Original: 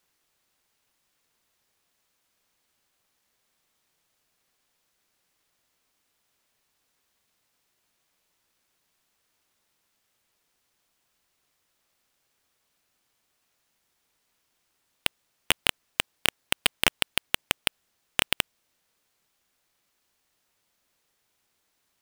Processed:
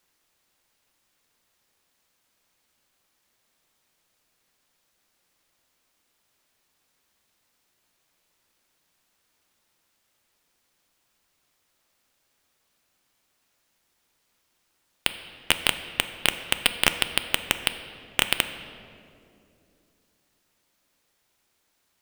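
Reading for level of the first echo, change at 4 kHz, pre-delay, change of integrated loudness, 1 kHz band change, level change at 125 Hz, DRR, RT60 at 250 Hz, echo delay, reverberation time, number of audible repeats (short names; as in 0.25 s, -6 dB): none, +2.5 dB, 3 ms, +2.0 dB, +2.5 dB, +2.5 dB, 9.0 dB, 3.6 s, none, 2.6 s, none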